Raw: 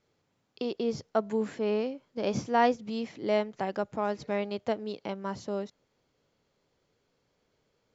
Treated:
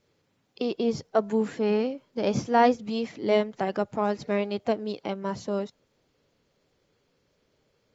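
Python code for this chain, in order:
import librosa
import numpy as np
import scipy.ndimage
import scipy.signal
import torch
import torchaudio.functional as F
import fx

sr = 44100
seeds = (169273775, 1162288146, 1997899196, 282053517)

y = fx.spec_quant(x, sr, step_db=15)
y = y * 10.0 ** (4.5 / 20.0)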